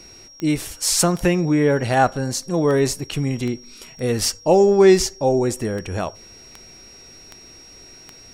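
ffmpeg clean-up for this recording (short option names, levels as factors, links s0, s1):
-af "adeclick=t=4,bandreject=f=5600:w=30"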